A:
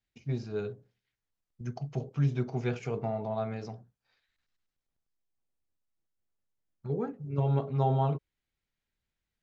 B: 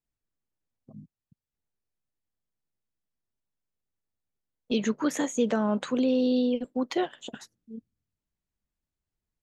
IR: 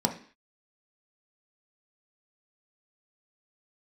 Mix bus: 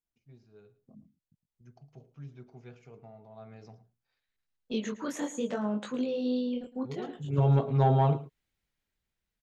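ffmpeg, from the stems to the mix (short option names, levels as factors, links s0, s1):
-filter_complex "[0:a]dynaudnorm=f=240:g=9:m=1.78,volume=0.944,afade=t=in:st=3.32:d=0.53:silence=0.316228,afade=t=in:st=7.03:d=0.31:silence=0.237137,asplit=3[s0][s1][s2];[s1]volume=0.133[s3];[1:a]flanger=delay=18.5:depth=6.5:speed=0.69,volume=0.668,asplit=2[s4][s5];[s5]volume=0.15[s6];[s2]apad=whole_len=415524[s7];[s4][s7]sidechaincompress=threshold=0.00794:ratio=8:attack=16:release=228[s8];[s3][s6]amix=inputs=2:normalize=0,aecho=0:1:110:1[s9];[s0][s8][s9]amix=inputs=3:normalize=0,asoftclip=type=tanh:threshold=0.237"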